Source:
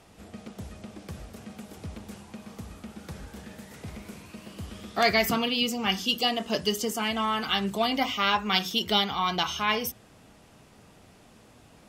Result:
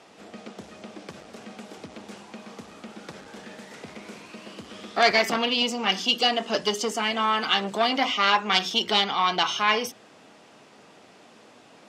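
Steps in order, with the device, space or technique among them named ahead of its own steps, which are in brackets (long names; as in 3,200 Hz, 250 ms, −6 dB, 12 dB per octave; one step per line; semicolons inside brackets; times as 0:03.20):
public-address speaker with an overloaded transformer (saturating transformer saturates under 1,700 Hz; band-pass filter 280–6,500 Hz)
level +5.5 dB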